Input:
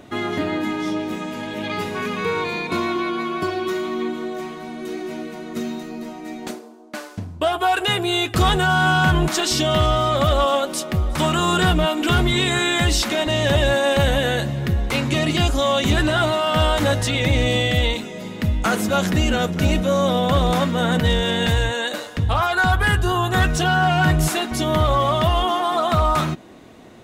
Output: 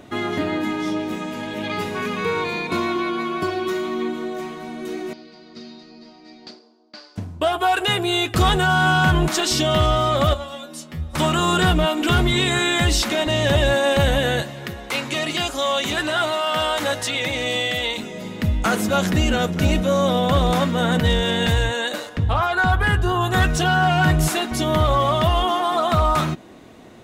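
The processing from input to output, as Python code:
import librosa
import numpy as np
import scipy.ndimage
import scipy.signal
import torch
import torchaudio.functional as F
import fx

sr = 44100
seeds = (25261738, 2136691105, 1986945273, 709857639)

y = fx.ladder_lowpass(x, sr, hz=4900.0, resonance_pct=85, at=(5.13, 7.16))
y = fx.stiff_resonator(y, sr, f0_hz=79.0, decay_s=0.4, stiffness=0.002, at=(10.33, 11.13), fade=0.02)
y = fx.highpass(y, sr, hz=580.0, slope=6, at=(14.42, 17.98))
y = fx.high_shelf(y, sr, hz=3900.0, db=-8.0, at=(22.09, 23.21))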